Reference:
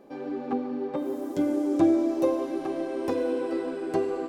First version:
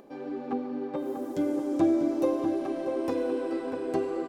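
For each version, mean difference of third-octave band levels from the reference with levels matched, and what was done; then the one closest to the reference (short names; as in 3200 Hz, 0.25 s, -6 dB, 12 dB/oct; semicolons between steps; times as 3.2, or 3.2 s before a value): 1.5 dB: upward compressor, threshold -47 dBFS; outdoor echo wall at 110 m, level -6 dB; gain -2.5 dB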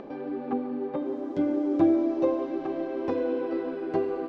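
2.5 dB: upward compressor, threshold -32 dBFS; air absorption 210 m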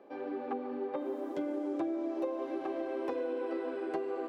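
4.5 dB: three-band isolator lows -17 dB, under 290 Hz, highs -15 dB, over 3600 Hz; compressor 6:1, threshold -30 dBFS, peak gain reduction 10.5 dB; gain -1.5 dB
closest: first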